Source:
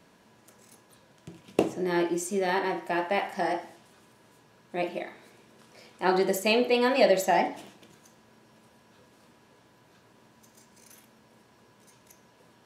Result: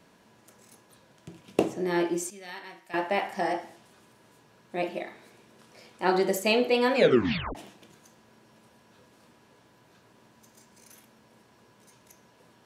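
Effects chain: 2.3–2.94 passive tone stack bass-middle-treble 5-5-5; 6.94 tape stop 0.61 s

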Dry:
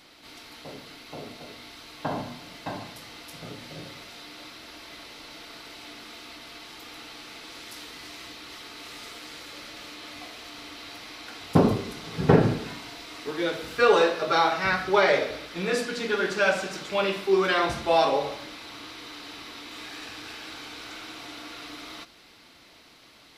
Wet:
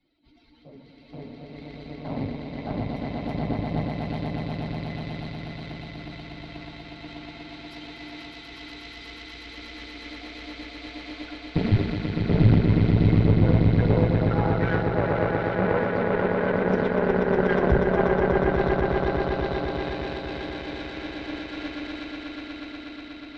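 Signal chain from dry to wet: spectral contrast raised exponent 2.3; reverse; compressor 12:1, threshold -31 dBFS, peak gain reduction 19 dB; reverse; RIAA curve playback; notch 1200 Hz, Q 6.6; on a send: swelling echo 0.121 s, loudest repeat 8, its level -5 dB; on the sum: dynamic EQ 1900 Hz, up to +5 dB, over -51 dBFS, Q 1.5; added harmonics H 4 -12 dB, 5 -28 dB, 7 -29 dB, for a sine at -10 dBFS; three-band expander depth 70%

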